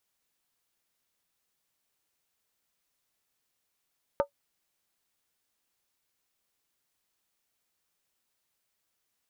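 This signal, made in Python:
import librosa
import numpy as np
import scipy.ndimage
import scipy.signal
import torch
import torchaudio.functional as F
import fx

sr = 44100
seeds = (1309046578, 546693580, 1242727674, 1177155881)

y = fx.strike_skin(sr, length_s=0.63, level_db=-17.5, hz=567.0, decay_s=0.1, tilt_db=5.5, modes=5)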